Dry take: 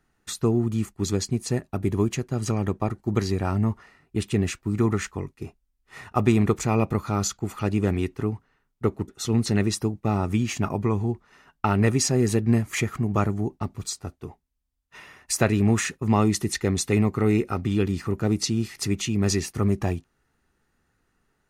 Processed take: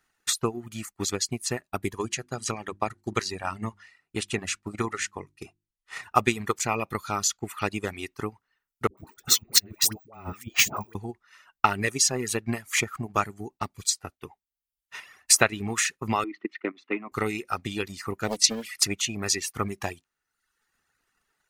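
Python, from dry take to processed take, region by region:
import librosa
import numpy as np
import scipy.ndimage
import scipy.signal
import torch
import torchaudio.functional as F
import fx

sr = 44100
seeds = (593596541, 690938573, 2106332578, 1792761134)

y = fx.chain(x, sr, fx.lowpass(hz=11000.0, slope=24),
    fx.hum_notches(base_hz=50, count=7), at=(1.97, 6.03))
y = fx.chain(y, sr, fx.resample_bad(factor=2, down='filtered', up='hold'),
    fx.over_compress(threshold_db=-29.0, ratio=-0.5),
    fx.dispersion(late='highs', ms=105.0, hz=600.0), at=(8.87, 10.95))
y = fx.chain(y, sr, fx.level_steps(step_db=11),
    fx.cabinet(low_hz=240.0, low_slope=24, high_hz=2400.0, hz=(300.0, 460.0, 830.0, 1700.0), db=(8, -5, -6, -4)), at=(16.24, 17.12))
y = fx.chain(y, sr, fx.comb(ms=4.1, depth=0.79),
    fx.doppler_dist(depth_ms=0.81), at=(18.28, 18.75))
y = fx.transient(y, sr, attack_db=7, sustain_db=1)
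y = fx.tilt_shelf(y, sr, db=-8.5, hz=650.0)
y = fx.dereverb_blind(y, sr, rt60_s=0.78)
y = F.gain(torch.from_numpy(y), -5.0).numpy()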